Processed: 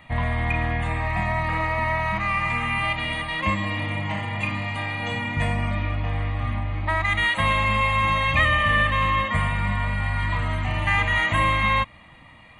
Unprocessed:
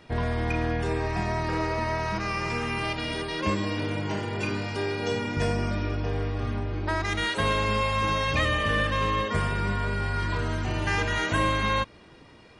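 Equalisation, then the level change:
flat-topped bell 1,600 Hz +8.5 dB 1 octave
phaser with its sweep stopped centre 1,500 Hz, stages 6
+4.5 dB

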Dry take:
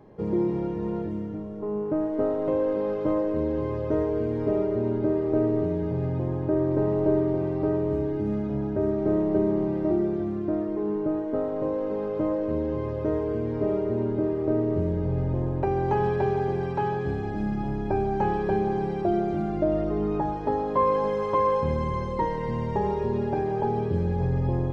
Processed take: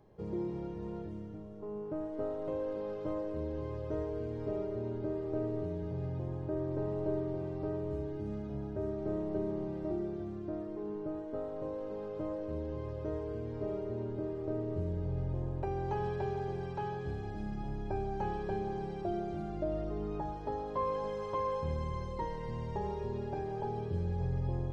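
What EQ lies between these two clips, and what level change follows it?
graphic EQ with 10 bands 125 Hz −3 dB, 250 Hz −9 dB, 500 Hz −4 dB, 1,000 Hz −5 dB, 2,000 Hz −6 dB
−4.5 dB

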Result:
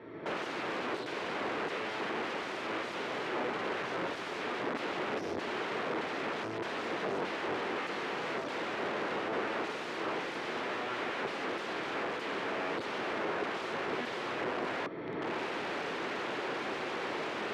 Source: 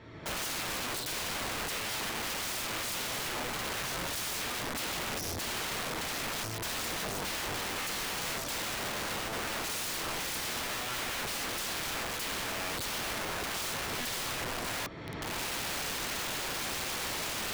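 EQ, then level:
band-pass filter 200–2,200 Hz
parametric band 390 Hz +7 dB 0.87 octaves
+1.5 dB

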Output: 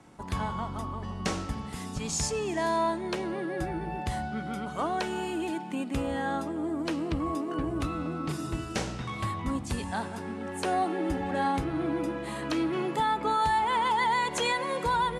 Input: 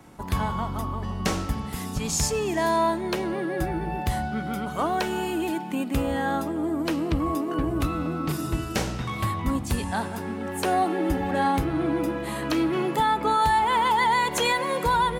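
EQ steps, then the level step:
low-pass filter 10,000 Hz 24 dB per octave
low-shelf EQ 62 Hz −5.5 dB
−4.5 dB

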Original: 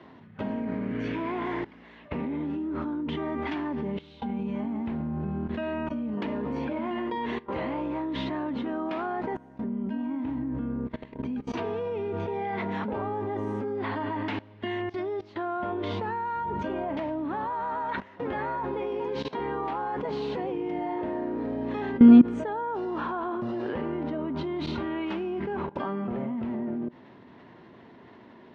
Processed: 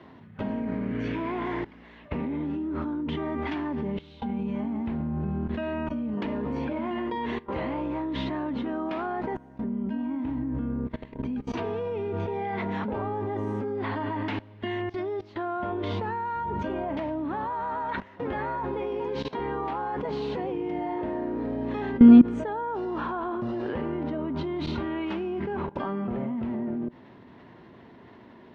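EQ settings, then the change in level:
low-shelf EQ 74 Hz +10 dB
0.0 dB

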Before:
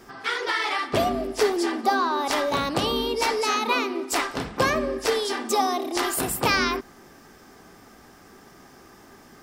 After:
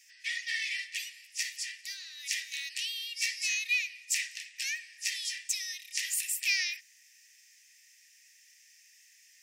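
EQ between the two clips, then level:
Chebyshev high-pass with heavy ripple 1,800 Hz, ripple 9 dB
+1.5 dB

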